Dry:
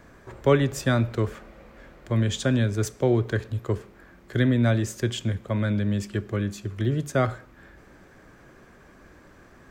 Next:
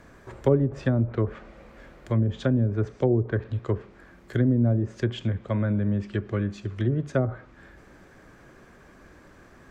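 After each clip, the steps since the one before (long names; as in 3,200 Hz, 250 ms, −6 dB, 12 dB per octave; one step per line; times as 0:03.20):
treble cut that deepens with the level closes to 510 Hz, closed at −17.5 dBFS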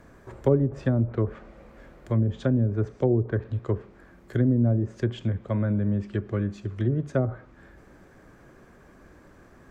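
parametric band 3,400 Hz −5 dB 2.7 octaves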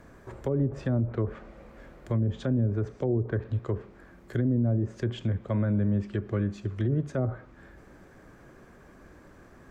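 brickwall limiter −18 dBFS, peak gain reduction 10 dB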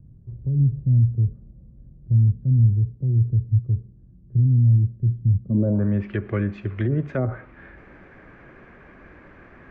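low-pass filter sweep 130 Hz → 2,300 Hz, 0:05.42–0:05.94
level +4 dB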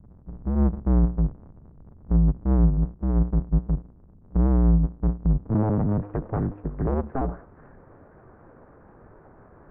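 sub-harmonics by changed cycles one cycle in 2, inverted
low-pass filter 1,200 Hz 24 dB per octave
level −2 dB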